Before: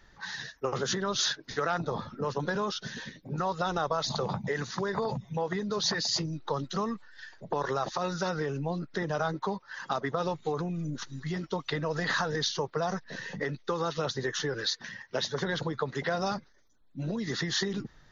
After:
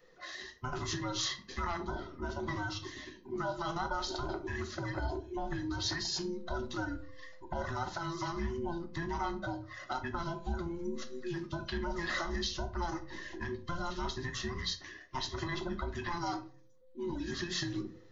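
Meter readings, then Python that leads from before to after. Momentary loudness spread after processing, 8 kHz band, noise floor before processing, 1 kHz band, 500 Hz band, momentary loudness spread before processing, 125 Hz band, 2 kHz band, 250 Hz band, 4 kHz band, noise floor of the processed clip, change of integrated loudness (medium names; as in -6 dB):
7 LU, no reading, -60 dBFS, -5.0 dB, -8.5 dB, 8 LU, -5.5 dB, -5.0 dB, -4.0 dB, -6.0 dB, -56 dBFS, -5.5 dB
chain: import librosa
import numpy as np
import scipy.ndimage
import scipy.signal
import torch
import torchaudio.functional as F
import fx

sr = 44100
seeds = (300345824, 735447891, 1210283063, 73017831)

y = fx.band_invert(x, sr, width_hz=500)
y = fx.room_shoebox(y, sr, seeds[0], volume_m3=270.0, walls='furnished', distance_m=1.0)
y = y * 10.0 ** (-7.0 / 20.0)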